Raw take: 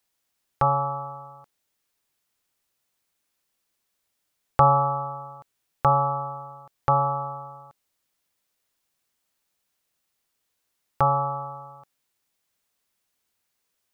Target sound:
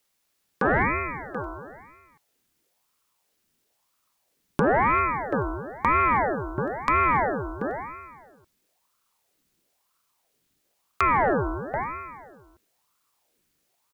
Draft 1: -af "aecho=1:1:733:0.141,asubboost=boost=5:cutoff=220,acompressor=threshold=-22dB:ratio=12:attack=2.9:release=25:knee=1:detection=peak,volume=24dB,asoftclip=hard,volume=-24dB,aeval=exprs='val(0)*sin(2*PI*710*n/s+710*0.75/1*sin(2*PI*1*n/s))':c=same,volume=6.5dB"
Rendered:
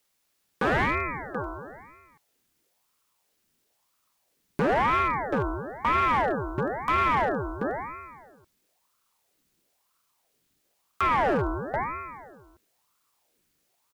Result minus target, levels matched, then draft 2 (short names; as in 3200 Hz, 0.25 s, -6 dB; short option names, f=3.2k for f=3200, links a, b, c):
overloaded stage: distortion +12 dB
-af "aecho=1:1:733:0.141,asubboost=boost=5:cutoff=220,acompressor=threshold=-22dB:ratio=12:attack=2.9:release=25:knee=1:detection=peak,volume=14dB,asoftclip=hard,volume=-14dB,aeval=exprs='val(0)*sin(2*PI*710*n/s+710*0.75/1*sin(2*PI*1*n/s))':c=same,volume=6.5dB"